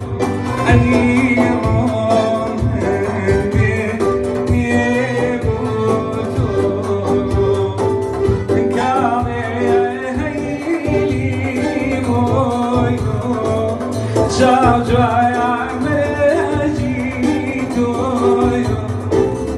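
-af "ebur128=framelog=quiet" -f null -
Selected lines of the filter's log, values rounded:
Integrated loudness:
  I:         -16.1 LUFS
  Threshold: -26.1 LUFS
Loudness range:
  LRA:         2.4 LU
  Threshold: -36.2 LUFS
  LRA low:   -17.2 LUFS
  LRA high:  -14.8 LUFS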